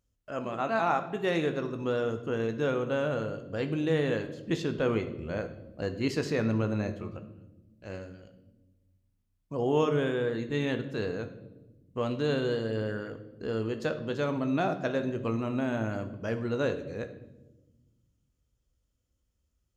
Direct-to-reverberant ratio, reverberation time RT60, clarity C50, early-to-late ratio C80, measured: 7.5 dB, 1.1 s, 11.5 dB, 14.0 dB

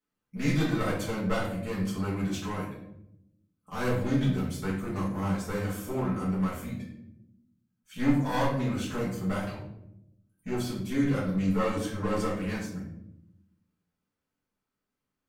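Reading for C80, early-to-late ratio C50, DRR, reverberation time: 7.0 dB, 3.5 dB, -9.5 dB, 0.80 s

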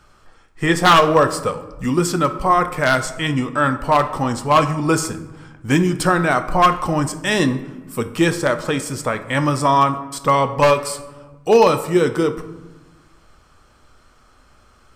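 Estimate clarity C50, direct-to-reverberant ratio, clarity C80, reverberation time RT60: 13.0 dB, 9.0 dB, 15.0 dB, 1.2 s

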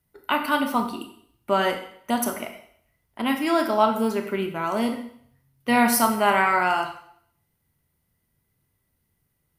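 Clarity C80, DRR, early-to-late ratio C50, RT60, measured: 11.5 dB, 5.0 dB, 8.0 dB, 0.60 s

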